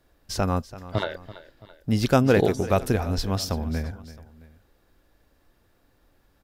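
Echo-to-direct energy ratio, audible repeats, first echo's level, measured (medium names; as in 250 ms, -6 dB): -15.5 dB, 2, -16.5 dB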